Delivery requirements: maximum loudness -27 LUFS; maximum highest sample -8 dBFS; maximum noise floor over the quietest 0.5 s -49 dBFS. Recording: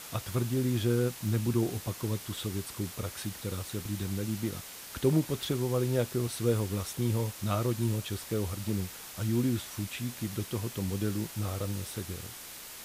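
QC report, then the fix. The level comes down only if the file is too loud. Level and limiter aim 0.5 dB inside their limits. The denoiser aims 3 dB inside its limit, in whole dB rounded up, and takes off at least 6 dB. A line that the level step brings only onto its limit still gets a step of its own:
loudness -32.5 LUFS: OK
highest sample -14.5 dBFS: OK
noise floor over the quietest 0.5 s -45 dBFS: fail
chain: denoiser 7 dB, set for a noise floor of -45 dBFS

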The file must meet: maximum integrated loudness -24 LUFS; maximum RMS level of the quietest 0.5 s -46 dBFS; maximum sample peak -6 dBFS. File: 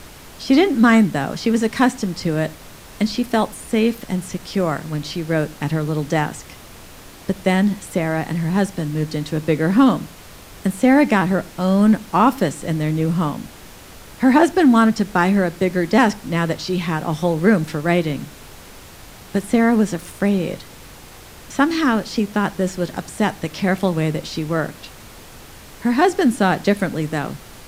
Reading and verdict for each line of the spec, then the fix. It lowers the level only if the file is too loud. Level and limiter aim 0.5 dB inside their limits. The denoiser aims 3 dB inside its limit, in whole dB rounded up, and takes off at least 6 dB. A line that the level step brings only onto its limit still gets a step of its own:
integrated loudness -19.0 LUFS: fail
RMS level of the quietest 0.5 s -40 dBFS: fail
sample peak -2.0 dBFS: fail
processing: denoiser 6 dB, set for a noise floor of -40 dBFS; gain -5.5 dB

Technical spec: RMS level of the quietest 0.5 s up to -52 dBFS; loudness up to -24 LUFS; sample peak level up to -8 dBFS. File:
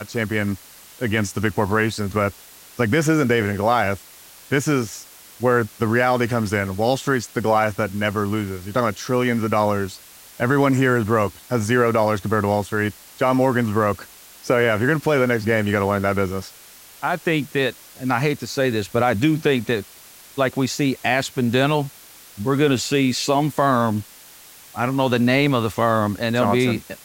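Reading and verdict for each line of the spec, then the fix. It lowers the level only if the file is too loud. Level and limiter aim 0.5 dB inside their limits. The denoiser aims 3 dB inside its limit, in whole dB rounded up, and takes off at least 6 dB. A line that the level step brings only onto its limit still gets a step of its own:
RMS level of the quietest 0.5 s -45 dBFS: fail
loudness -20.5 LUFS: fail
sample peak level -5.5 dBFS: fail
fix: denoiser 6 dB, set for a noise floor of -45 dBFS; gain -4 dB

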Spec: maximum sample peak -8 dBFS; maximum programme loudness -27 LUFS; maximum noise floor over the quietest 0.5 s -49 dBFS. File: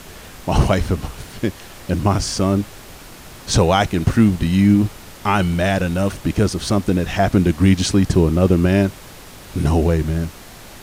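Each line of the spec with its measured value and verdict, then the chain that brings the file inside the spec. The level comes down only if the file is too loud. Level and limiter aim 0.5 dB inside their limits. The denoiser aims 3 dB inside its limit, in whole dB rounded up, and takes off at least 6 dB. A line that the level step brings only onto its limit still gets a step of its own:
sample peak -3.5 dBFS: fail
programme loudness -18.0 LUFS: fail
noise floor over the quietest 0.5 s -39 dBFS: fail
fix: denoiser 6 dB, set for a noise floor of -39 dBFS; gain -9.5 dB

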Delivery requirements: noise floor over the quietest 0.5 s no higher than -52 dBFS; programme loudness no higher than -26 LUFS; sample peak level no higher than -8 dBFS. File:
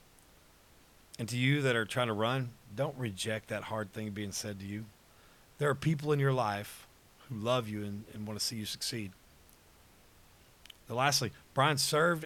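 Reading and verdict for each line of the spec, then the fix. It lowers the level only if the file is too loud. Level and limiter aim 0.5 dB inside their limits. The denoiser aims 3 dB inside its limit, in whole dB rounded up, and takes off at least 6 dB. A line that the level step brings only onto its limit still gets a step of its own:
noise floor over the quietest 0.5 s -61 dBFS: OK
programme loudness -33.0 LUFS: OK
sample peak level -14.0 dBFS: OK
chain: none

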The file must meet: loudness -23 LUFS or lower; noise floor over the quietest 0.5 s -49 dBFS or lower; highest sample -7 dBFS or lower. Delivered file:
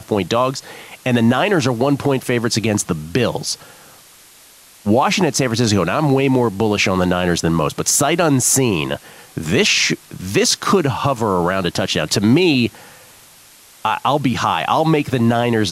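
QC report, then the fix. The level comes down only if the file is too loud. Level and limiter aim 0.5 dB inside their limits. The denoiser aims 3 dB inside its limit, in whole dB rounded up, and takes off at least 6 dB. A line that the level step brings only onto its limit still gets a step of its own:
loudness -17.0 LUFS: fail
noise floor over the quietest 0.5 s -46 dBFS: fail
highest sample -4.5 dBFS: fail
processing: gain -6.5 dB

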